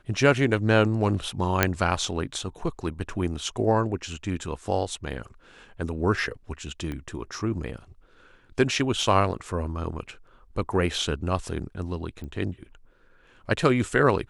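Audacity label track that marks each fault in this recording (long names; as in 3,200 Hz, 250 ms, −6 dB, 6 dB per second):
1.630000	1.630000	click −3 dBFS
6.920000	6.920000	click −21 dBFS
12.240000	12.240000	click −27 dBFS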